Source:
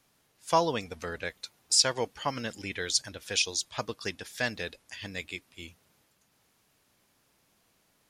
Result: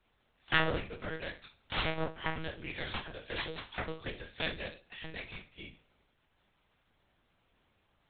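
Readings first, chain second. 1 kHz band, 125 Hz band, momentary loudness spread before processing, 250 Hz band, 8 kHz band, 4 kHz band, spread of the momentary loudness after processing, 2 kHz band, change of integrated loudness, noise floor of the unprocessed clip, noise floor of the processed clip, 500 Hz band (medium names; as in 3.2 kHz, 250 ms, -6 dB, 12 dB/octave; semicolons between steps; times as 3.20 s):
-7.0 dB, -0.5 dB, 17 LU, -3.5 dB, under -40 dB, -8.5 dB, 16 LU, -0.5 dB, -7.0 dB, -70 dBFS, -74 dBFS, -6.5 dB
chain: self-modulated delay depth 0.96 ms; flutter echo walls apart 4.9 m, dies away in 0.32 s; monotone LPC vocoder at 8 kHz 160 Hz; trim -3 dB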